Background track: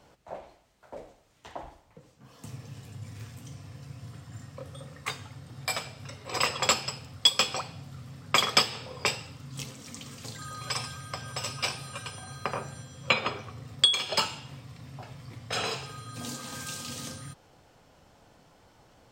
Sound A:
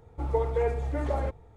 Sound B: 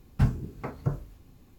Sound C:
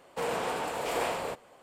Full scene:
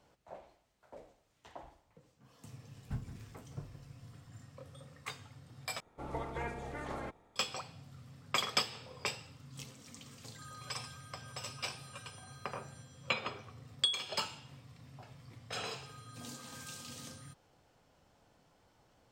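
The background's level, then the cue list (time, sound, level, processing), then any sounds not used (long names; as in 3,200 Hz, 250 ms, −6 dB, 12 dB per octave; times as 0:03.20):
background track −9.5 dB
0:02.71: mix in B −17 dB + single-tap delay 168 ms −11.5 dB
0:05.80: overwrite with A −13 dB + ceiling on every frequency bin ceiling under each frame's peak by 22 dB
not used: C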